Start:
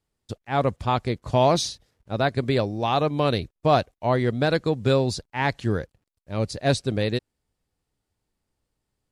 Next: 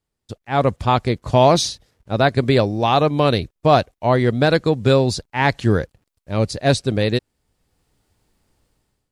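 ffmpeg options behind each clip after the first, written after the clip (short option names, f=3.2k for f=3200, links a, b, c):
-af "dynaudnorm=f=200:g=5:m=15dB,volume=-1dB"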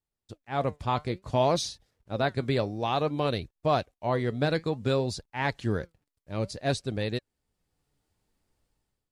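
-af "flanger=delay=1.1:depth=5.9:regen=78:speed=0.57:shape=sinusoidal,volume=-6.5dB"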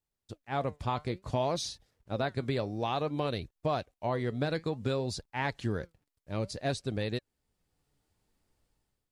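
-af "acompressor=threshold=-29dB:ratio=2.5"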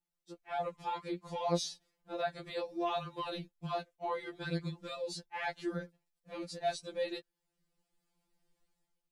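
-af "afftfilt=real='re*2.83*eq(mod(b,8),0)':imag='im*2.83*eq(mod(b,8),0)':win_size=2048:overlap=0.75,volume=-1.5dB"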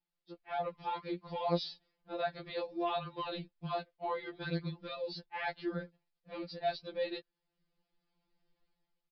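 -af "aresample=11025,aresample=44100"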